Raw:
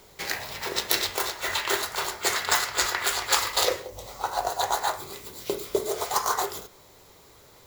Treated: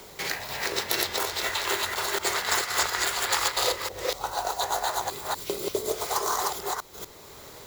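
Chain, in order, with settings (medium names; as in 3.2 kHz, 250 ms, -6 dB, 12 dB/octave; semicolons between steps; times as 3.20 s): chunks repeated in reverse 243 ms, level -1 dB; three bands compressed up and down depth 40%; trim -3 dB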